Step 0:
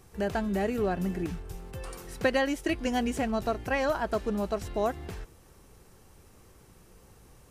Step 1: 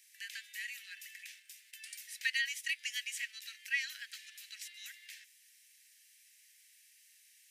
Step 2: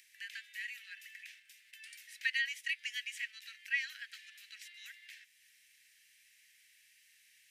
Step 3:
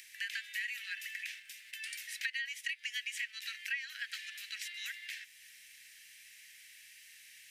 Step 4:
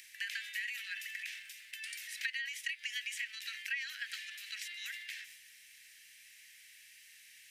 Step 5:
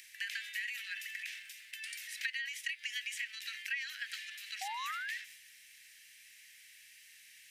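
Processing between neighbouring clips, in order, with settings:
steep high-pass 1.8 kHz 72 dB/octave; trim +1 dB
upward compressor, threshold -54 dBFS; tone controls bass +11 dB, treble -10 dB; trim +1 dB
compression 12:1, threshold -44 dBFS, peak gain reduction 16.5 dB; trim +9.5 dB
transient shaper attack +2 dB, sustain +7 dB; trim -2 dB
painted sound rise, 4.61–5.18 s, 740–2000 Hz -41 dBFS

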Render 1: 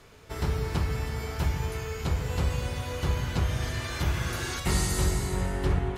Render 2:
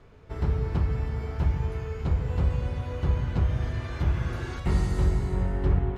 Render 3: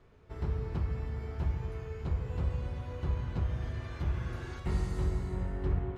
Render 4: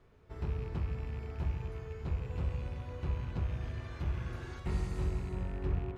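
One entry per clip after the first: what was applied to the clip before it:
low-pass 2.2 kHz 6 dB/octave; tilt EQ -1.5 dB/octave; trim -2.5 dB
feedback comb 360 Hz, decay 0.43 s, harmonics odd; reverberation RT60 1.1 s, pre-delay 47 ms, DRR 12.5 dB
rattle on loud lows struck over -34 dBFS, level -43 dBFS; trim -2.5 dB

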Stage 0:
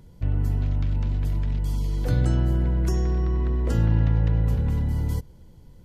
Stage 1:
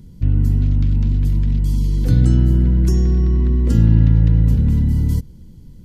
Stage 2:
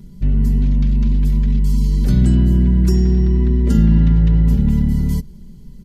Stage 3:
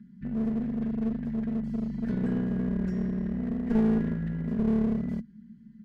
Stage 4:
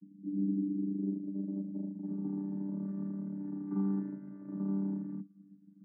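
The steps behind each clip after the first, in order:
FFT filter 120 Hz 0 dB, 230 Hz +4 dB, 660 Hz -14 dB, 4.7 kHz -3 dB; trim +8 dB
comb 5 ms, depth 82%
two resonant band-passes 610 Hz, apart 2.9 oct; one-sided clip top -29 dBFS
vocoder on a held chord bare fifth, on G3; low-pass sweep 310 Hz -> 1.2 kHz, 0.63–3.06 s; trim -8.5 dB

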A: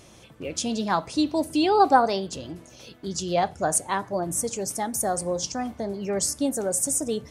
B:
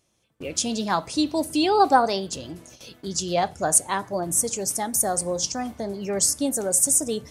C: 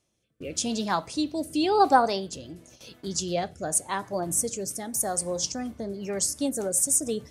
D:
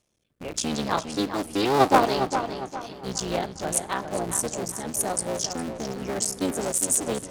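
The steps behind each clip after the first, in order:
gate with hold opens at -36 dBFS; treble shelf 4.4 kHz +7 dB
rotary cabinet horn 0.9 Hz, later 7 Hz, at 5.87 s; trim -1.5 dB
cycle switcher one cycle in 3, muted; filtered feedback delay 406 ms, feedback 38%, low-pass 4.2 kHz, level -8 dB; loudspeaker Doppler distortion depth 0.15 ms; trim +2.5 dB

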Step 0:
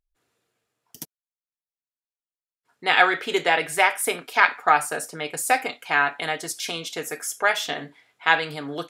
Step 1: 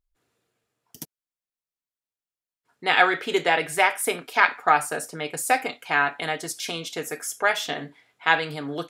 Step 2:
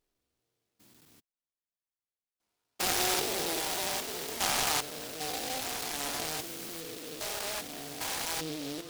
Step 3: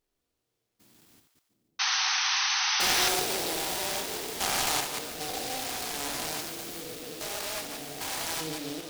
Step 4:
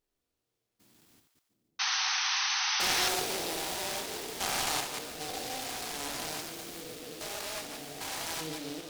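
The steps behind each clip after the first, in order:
bass shelf 420 Hz +4 dB; trim -1.5 dB
spectrogram pixelated in time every 400 ms; flange 1.9 Hz, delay 2.1 ms, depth 1.9 ms, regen -49%; delay time shaken by noise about 3.7 kHz, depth 0.18 ms
chunks repeated in reverse 116 ms, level -5.5 dB; two-band feedback delay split 600 Hz, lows 698 ms, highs 144 ms, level -11 dB; painted sound noise, 1.79–3.09 s, 740–6300 Hz -27 dBFS
loudspeaker Doppler distortion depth 0.17 ms; trim -3 dB

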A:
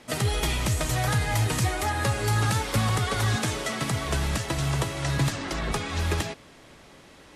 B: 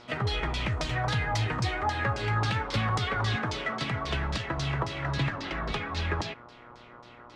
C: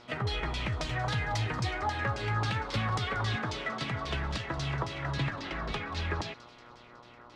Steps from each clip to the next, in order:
mains buzz 120 Hz, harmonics 12, -50 dBFS -1 dB/octave; LFO low-pass saw down 3.7 Hz 930–5400 Hz; trim -4.5 dB
feedback echo behind a high-pass 184 ms, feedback 66%, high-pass 3.1 kHz, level -16.5 dB; trim -3 dB

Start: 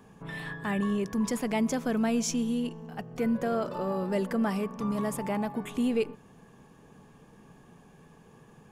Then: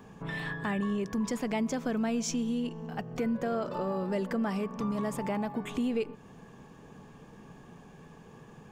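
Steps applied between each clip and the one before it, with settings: peaking EQ 11 kHz -11.5 dB 0.46 oct; compression 2:1, threshold -36 dBFS, peak gain reduction 7.5 dB; trim +3.5 dB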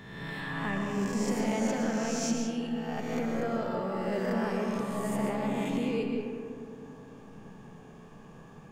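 reverse spectral sustain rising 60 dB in 1.30 s; reverberation RT60 2.5 s, pre-delay 90 ms, DRR 1 dB; trim -4.5 dB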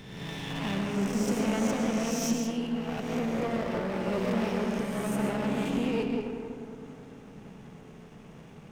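comb filter that takes the minimum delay 0.33 ms; trim +2 dB

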